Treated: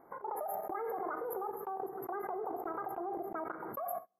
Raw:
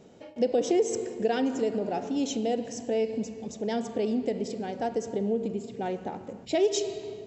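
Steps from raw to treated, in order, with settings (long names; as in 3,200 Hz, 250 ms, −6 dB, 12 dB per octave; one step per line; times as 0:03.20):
linear-phase brick-wall band-stop 1,300–6,400 Hz
wrong playback speed 45 rpm record played at 78 rpm
mains-hum notches 60/120/180/240/300/360/420/480 Hz
output level in coarse steps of 17 dB
tuned comb filter 65 Hz, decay 0.97 s, harmonics all, mix 50%
noise gate −44 dBFS, range −28 dB
background raised ahead of every attack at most 28 dB per second
level +1 dB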